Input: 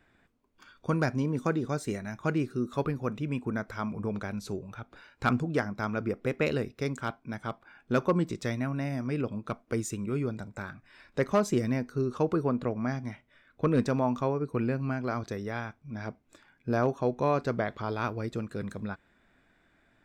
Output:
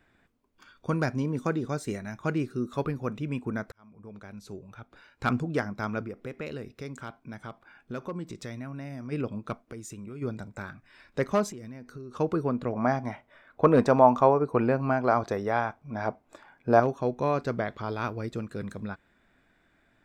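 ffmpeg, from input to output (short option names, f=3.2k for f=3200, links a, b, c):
-filter_complex "[0:a]asplit=3[a][b][c];[a]afade=t=out:st=6.03:d=0.02[d];[b]acompressor=threshold=-39dB:ratio=2:attack=3.2:release=140:knee=1:detection=peak,afade=t=in:st=6.03:d=0.02,afade=t=out:st=9.11:d=0.02[e];[c]afade=t=in:st=9.11:d=0.02[f];[d][e][f]amix=inputs=3:normalize=0,asplit=3[g][h][i];[g]afade=t=out:st=9.61:d=0.02[j];[h]acompressor=threshold=-39dB:ratio=4:attack=3.2:release=140:knee=1:detection=peak,afade=t=in:st=9.61:d=0.02,afade=t=out:st=10.21:d=0.02[k];[i]afade=t=in:st=10.21:d=0.02[l];[j][k][l]amix=inputs=3:normalize=0,asettb=1/sr,asplit=3[m][n][o];[m]atrim=end=11.514[p];[n]atrim=start=11.51:end=12.15,asetpts=PTS-STARTPTS,afade=t=in:d=0.004:c=qsin,afade=t=out:st=0.636:d=0.004:c=qsin,acompressor=threshold=-39dB:ratio=6:attack=3.2:release=140:knee=1:detection=peak[q];[o]atrim=start=12.146[r];[p][q]acrossfade=d=0.004:c1=hsin:c2=qsin[s];[s][r]acrossfade=d=0.004:c1=qsin:c2=hsin,asettb=1/sr,asplit=3[t][u][v];[t]atrim=end=12.734[w];[u]atrim=start=12.73:end=16.8,asetpts=PTS-STARTPTS,afade=t=in:d=0.004:c=qsin,afade=t=out:st=4.066:d=0.004:c=qsin,equalizer=f=780:w=0.77:g=13.5[x];[v]atrim=start=16.796[y];[w][x]acrossfade=d=0.004:c1=hsin:c2=qsin[z];[z][y]acrossfade=d=0.004:c1=qsin:c2=hsin,asplit=2[aa][ab];[aa]atrim=end=3.72,asetpts=PTS-STARTPTS,afade=t=out:st=3.716:d=0.004:c=hsin[ac];[ab]atrim=start=3.72,asetpts=PTS-STARTPTS,afade=t=in:d=1.65[ad];[ac][ad]concat=n=2:v=0:a=1"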